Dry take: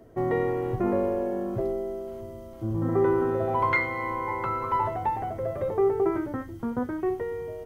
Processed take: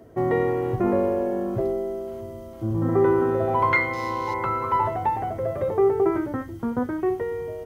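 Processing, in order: 3.93–4.34 median filter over 15 samples; HPF 42 Hz; gain +3.5 dB

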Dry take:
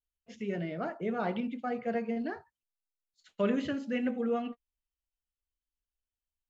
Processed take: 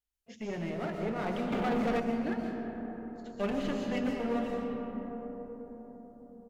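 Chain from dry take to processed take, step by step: one-sided clip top -36.5 dBFS; on a send at -2.5 dB: tone controls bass +4 dB, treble +13 dB + reverb RT60 5.0 s, pre-delay 90 ms; 1.52–2 on the sum: sample leveller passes 2; frequency-shifting echo 0.165 s, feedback 59%, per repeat -44 Hz, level -22 dB

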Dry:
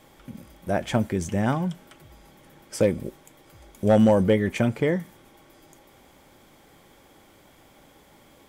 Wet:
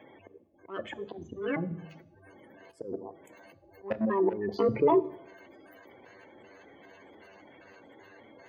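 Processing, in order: trilling pitch shifter +11.5 st, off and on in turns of 0.195 s; spectral gate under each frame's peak -15 dB strong; dynamic EQ 410 Hz, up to +5 dB, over -39 dBFS, Q 7.8; level quantiser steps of 16 dB; soft clip -21.5 dBFS, distortion -7 dB; auto swell 0.439 s; reverb RT60 0.90 s, pre-delay 3 ms, DRR 15 dB; gain +4 dB

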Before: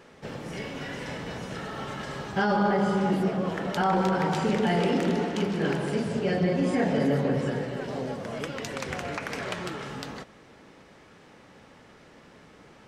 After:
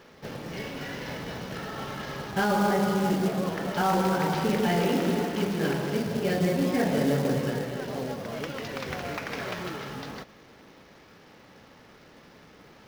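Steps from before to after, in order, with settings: CVSD 32 kbps; short-mantissa float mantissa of 2-bit

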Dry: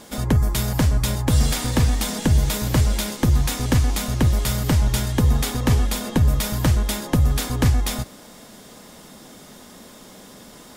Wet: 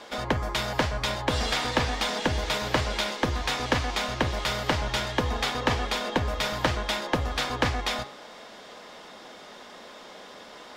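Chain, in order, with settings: three-band isolator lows -17 dB, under 400 Hz, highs -23 dB, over 4900 Hz; de-hum 138.3 Hz, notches 34; gain +3.5 dB

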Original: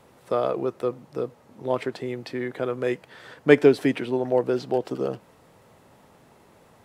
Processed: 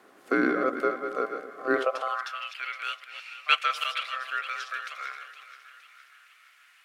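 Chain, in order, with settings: reverse delay 0.16 s, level -7.5 dB; ring modulator 910 Hz; on a send: split-band echo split 1200 Hz, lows 0.251 s, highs 0.465 s, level -13.5 dB; on the sum: high-pass sweep 270 Hz -> 2300 Hz, 1.64–2.46

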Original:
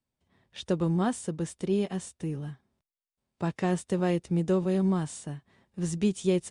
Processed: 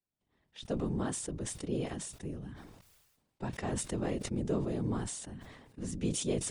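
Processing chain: whisperiser; sustainer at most 45 dB/s; gain -8.5 dB

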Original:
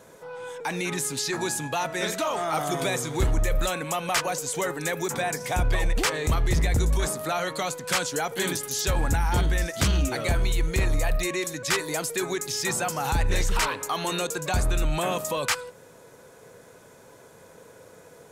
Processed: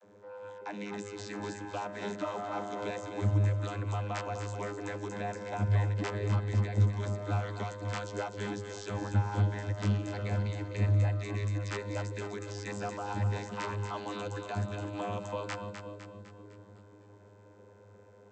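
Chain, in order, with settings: vocoder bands 32, saw 102 Hz; split-band echo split 490 Hz, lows 0.53 s, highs 0.253 s, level -8 dB; gain -4 dB

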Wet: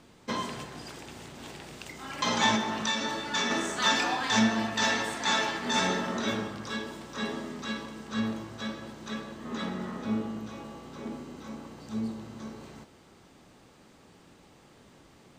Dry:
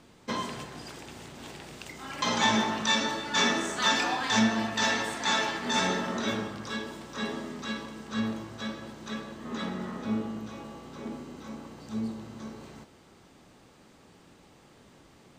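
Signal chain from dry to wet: 2.55–3.51 compressor 4:1, threshold -26 dBFS, peak gain reduction 5.5 dB

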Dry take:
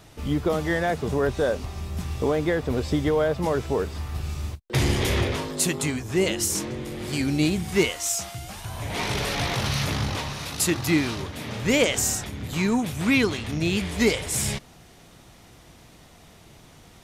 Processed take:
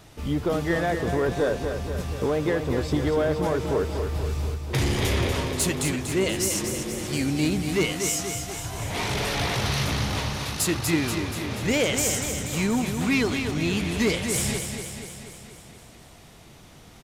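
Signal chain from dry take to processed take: soft clip -16 dBFS, distortion -17 dB; on a send: feedback echo 0.24 s, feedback 60%, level -7 dB

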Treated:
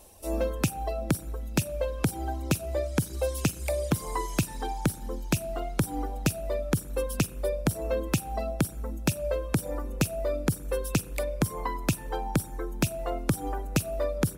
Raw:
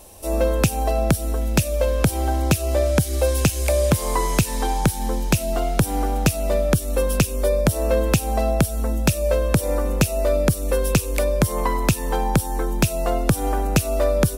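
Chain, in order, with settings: reverb removal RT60 1.9 s; dynamic EQ 300 Hz, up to +5 dB, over -37 dBFS, Q 3.5; spring tank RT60 1.1 s, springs 40/45/57 ms, chirp 60 ms, DRR 18.5 dB; gain -7.5 dB

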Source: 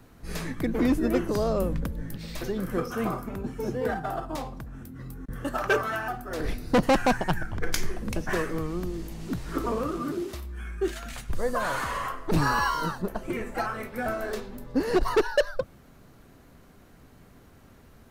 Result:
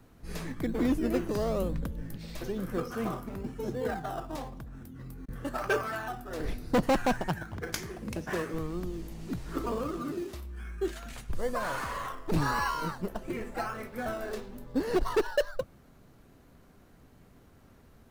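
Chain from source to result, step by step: 7.28–8.54 HPF 70 Hz; in parallel at -11 dB: decimation with a swept rate 16×, swing 60% 1 Hz; on the sum: gain -6 dB

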